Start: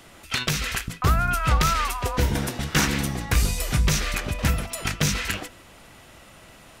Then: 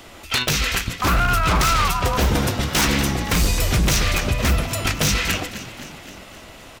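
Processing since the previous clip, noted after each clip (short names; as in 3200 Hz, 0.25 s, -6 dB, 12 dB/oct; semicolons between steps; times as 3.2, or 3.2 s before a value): fifteen-band EQ 160 Hz -6 dB, 1600 Hz -3 dB, 10000 Hz -6 dB; frequency-shifting echo 0.26 s, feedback 60%, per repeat +34 Hz, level -14.5 dB; wavefolder -19.5 dBFS; gain +7.5 dB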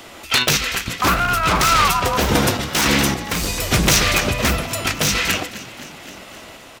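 low shelf 100 Hz -12 dB; random-step tremolo 3.5 Hz; gain +6 dB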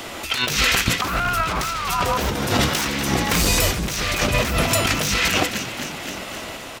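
negative-ratio compressor -23 dBFS, ratio -1; gain +2 dB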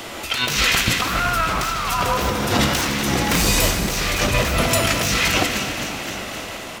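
plate-style reverb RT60 3.6 s, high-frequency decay 0.85×, DRR 5 dB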